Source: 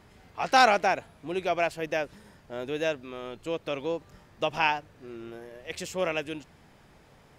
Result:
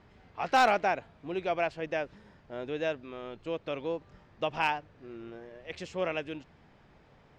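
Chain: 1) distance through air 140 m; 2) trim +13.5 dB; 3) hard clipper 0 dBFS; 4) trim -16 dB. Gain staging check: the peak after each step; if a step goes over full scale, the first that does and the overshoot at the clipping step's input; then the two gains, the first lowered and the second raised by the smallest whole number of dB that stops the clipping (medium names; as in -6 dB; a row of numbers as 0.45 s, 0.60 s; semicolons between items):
-10.0 dBFS, +3.5 dBFS, 0.0 dBFS, -16.0 dBFS; step 2, 3.5 dB; step 2 +9.5 dB, step 4 -12 dB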